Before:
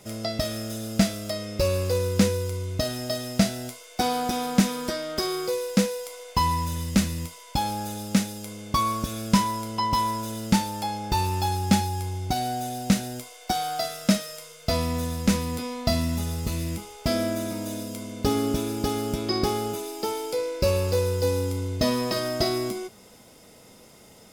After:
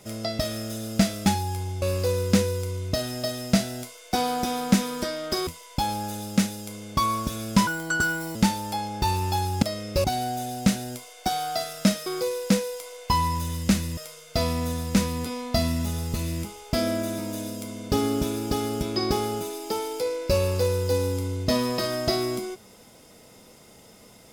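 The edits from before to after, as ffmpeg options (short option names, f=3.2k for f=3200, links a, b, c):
-filter_complex "[0:a]asplit=10[a][b][c][d][e][f][g][h][i][j];[a]atrim=end=1.262[k];[b]atrim=start=11.718:end=12.282[l];[c]atrim=start=1.678:end=5.332[m];[d]atrim=start=7.238:end=9.444[n];[e]atrim=start=9.44:end=10.45,asetpts=PTS-STARTPTS,asetrate=65268,aresample=44100,atrim=end_sample=30095,asetpts=PTS-STARTPTS[o];[f]atrim=start=10.446:end=11.722[p];[g]atrim=start=1.258:end=1.682[q];[h]atrim=start=12.278:end=14.302[r];[i]atrim=start=5.328:end=7.242[s];[j]atrim=start=14.298[t];[k][l]acrossfade=d=0.004:c1=hsin:c2=hsin[u];[u][m]acrossfade=d=0.004:c1=hsin:c2=hsin[v];[v][n]acrossfade=d=0.004:c1=hsin:c2=hsin[w];[w][o]acrossfade=d=0.004:c1=hsin:c2=hsin[x];[x][p]acrossfade=d=0.004:c1=hsin:c2=hsin[y];[y][q]acrossfade=d=0.004:c1=hsin:c2=hsin[z];[z][r]acrossfade=d=0.004:c1=hsin:c2=hsin[aa];[aa][s]acrossfade=d=0.004:c1=hsin:c2=hsin[ab];[ab][t]acrossfade=d=0.004:c1=hsin:c2=hsin"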